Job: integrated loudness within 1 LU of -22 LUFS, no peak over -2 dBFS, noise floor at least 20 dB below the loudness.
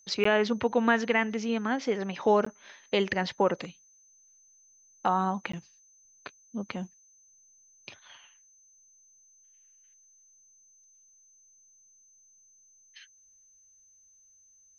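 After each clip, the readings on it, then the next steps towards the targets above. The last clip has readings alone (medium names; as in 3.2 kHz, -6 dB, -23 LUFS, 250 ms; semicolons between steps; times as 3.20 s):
dropouts 3; longest dropout 14 ms; steady tone 6.2 kHz; tone level -58 dBFS; loudness -28.5 LUFS; peak level -10.0 dBFS; loudness target -22.0 LUFS
-> interpolate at 0.24/2.45/5.52 s, 14 ms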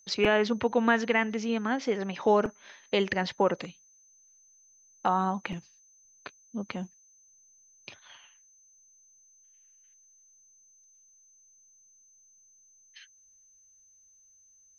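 dropouts 0; steady tone 6.2 kHz; tone level -58 dBFS
-> band-stop 6.2 kHz, Q 30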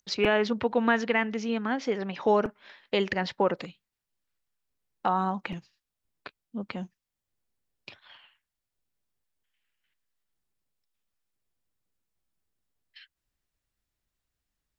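steady tone not found; loudness -28.0 LUFS; peak level -10.0 dBFS; loudness target -22.0 LUFS
-> trim +6 dB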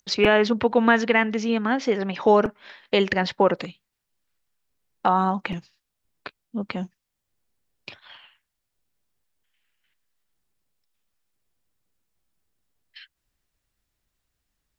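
loudness -22.0 LUFS; peak level -4.0 dBFS; noise floor -81 dBFS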